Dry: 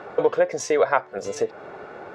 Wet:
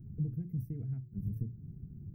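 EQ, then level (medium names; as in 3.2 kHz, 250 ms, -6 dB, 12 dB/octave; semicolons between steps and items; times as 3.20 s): inverse Chebyshev band-stop 510–7500 Hz, stop band 60 dB; bass shelf 99 Hz +8.5 dB; hum notches 60/120/180/240/300/360/420 Hz; +10.0 dB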